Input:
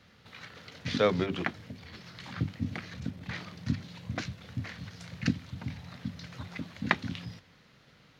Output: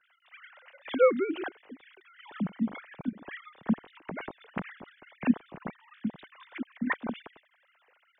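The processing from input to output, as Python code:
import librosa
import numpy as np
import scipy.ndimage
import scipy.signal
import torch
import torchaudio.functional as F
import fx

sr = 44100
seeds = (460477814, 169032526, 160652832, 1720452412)

y = fx.sine_speech(x, sr)
y = y * librosa.db_to_amplitude(2.0)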